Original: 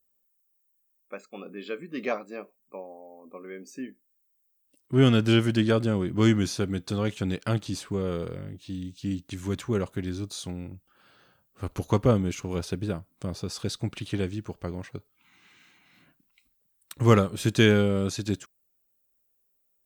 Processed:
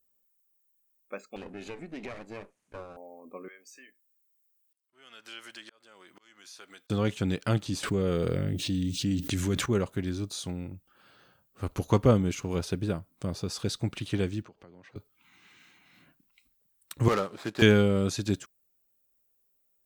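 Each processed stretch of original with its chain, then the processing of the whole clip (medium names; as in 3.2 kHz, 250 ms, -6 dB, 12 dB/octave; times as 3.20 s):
1.36–2.97 s: comb filter that takes the minimum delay 0.46 ms + low-pass 11 kHz 24 dB/octave + compression 12:1, threshold -35 dBFS
3.48–6.90 s: high-pass 1 kHz + compression 2:1, threshold -49 dBFS + slow attack 518 ms
7.83–9.66 s: peaking EQ 1 kHz -5.5 dB 0.51 oct + level flattener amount 70%
14.42–14.96 s: compression 10:1, threshold -46 dBFS + three-band isolator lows -12 dB, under 160 Hz, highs -18 dB, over 5.9 kHz
17.08–17.62 s: median filter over 15 samples + frequency weighting A + overload inside the chain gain 20 dB
whole clip: none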